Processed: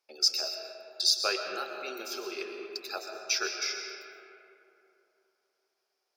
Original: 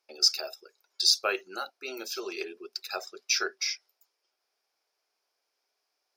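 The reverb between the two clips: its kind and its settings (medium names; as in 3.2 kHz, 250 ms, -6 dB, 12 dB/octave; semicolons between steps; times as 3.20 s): algorithmic reverb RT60 3 s, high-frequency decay 0.45×, pre-delay 80 ms, DRR 3.5 dB; trim -2.5 dB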